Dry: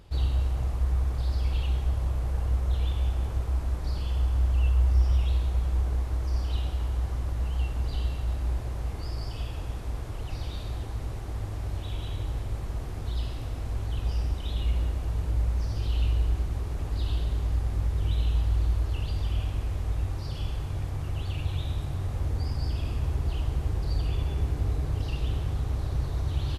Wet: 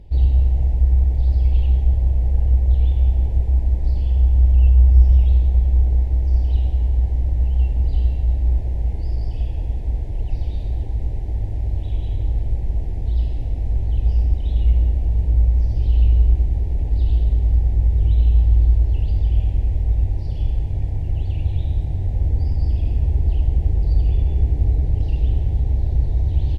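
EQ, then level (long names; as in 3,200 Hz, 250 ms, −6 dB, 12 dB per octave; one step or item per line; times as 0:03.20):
Chebyshev band-stop filter 850–1,900 Hz, order 2
spectral tilt −3 dB per octave
parametric band 120 Hz −3.5 dB
0.0 dB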